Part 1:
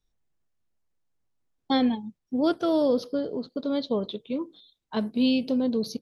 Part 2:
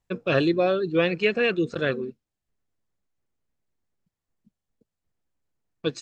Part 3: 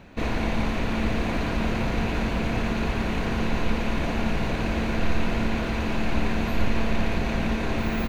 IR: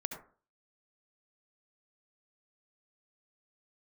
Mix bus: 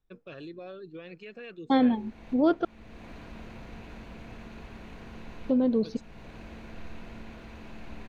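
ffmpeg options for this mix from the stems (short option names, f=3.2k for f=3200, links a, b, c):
-filter_complex "[0:a]lowpass=2.3k,volume=1dB,asplit=3[a][b][c];[a]atrim=end=2.65,asetpts=PTS-STARTPTS,afade=t=out:st=2.646:d=0.004:c=hsin[d];[b]atrim=start=2.65:end=5.49,asetpts=PTS-STARTPTS,volume=0[e];[c]atrim=start=5.49,asetpts=PTS-STARTPTS,afade=t=in:d=0.004:c=hsin[f];[d][e][f]concat=n=3:v=0:a=1,asplit=2[g][h];[1:a]alimiter=limit=-17.5dB:level=0:latency=1:release=75,volume=-17.5dB[i];[2:a]adelay=1750,volume=-19dB[j];[h]apad=whole_len=433581[k];[j][k]sidechaincompress=threshold=-32dB:ratio=8:attack=16:release=542[l];[g][i][l]amix=inputs=3:normalize=0"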